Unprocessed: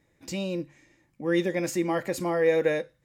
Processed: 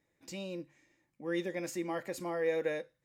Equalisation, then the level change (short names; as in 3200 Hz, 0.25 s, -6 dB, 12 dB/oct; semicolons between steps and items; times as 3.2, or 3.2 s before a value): low shelf 150 Hz -8 dB; -8.5 dB